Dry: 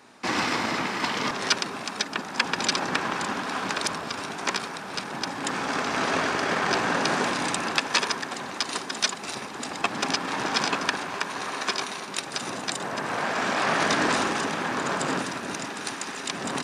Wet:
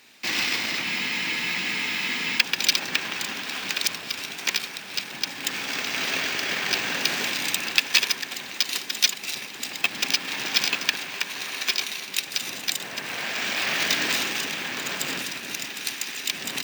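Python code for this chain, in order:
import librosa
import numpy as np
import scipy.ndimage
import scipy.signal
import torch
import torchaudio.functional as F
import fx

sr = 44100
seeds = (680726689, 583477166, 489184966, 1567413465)

y = fx.high_shelf_res(x, sr, hz=1700.0, db=11.5, q=1.5)
y = np.repeat(y[::2], 2)[:len(y)]
y = fx.spec_freeze(y, sr, seeds[0], at_s=0.85, hold_s=1.54)
y = y * librosa.db_to_amplitude(-7.5)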